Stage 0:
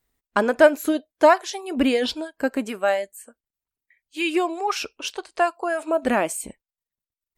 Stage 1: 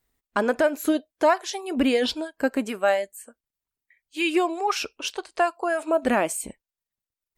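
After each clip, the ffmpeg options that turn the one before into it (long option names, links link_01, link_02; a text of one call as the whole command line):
ffmpeg -i in.wav -af "alimiter=limit=-10dB:level=0:latency=1:release=179" out.wav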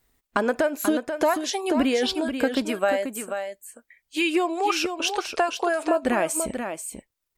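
ffmpeg -i in.wav -filter_complex "[0:a]acompressor=threshold=-30dB:ratio=2.5,asplit=2[link_01][link_02];[link_02]aecho=0:1:486:0.422[link_03];[link_01][link_03]amix=inputs=2:normalize=0,volume=7dB" out.wav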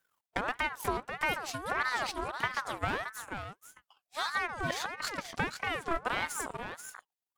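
ffmpeg -i in.wav -af "aeval=exprs='if(lt(val(0),0),0.251*val(0),val(0))':channel_layout=same,aeval=exprs='val(0)*sin(2*PI*1100*n/s+1100*0.4/1.6*sin(2*PI*1.6*n/s))':channel_layout=same,volume=-5dB" out.wav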